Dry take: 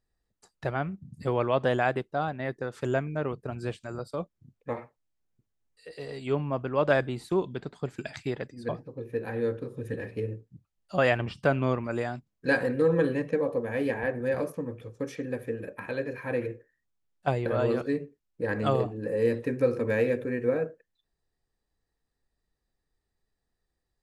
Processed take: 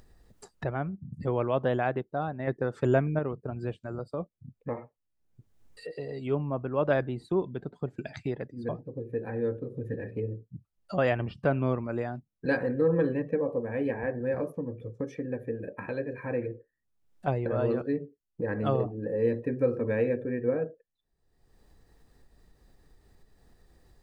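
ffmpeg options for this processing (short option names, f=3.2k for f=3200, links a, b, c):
-filter_complex "[0:a]asettb=1/sr,asplit=3[a][b][c];[a]atrim=end=2.474[d];[b]atrim=start=2.47:end=3.19,asetpts=PTS-STARTPTS,afade=t=in:d=0.004:c=qsin,afade=t=out:st=0.716:d=0.004:c=qsin,acontrast=35[e];[c]atrim=start=3.186[f];[d][e]acrossfade=d=0.004:c1=hsin:c2=qsin[g];[g][f]acrossfade=d=0.004:c1=qsin:c2=hsin,afftdn=nr=13:nf=-48,tiltshelf=f=970:g=3.5,acompressor=mode=upward:threshold=-27dB:ratio=2.5,volume=-3.5dB"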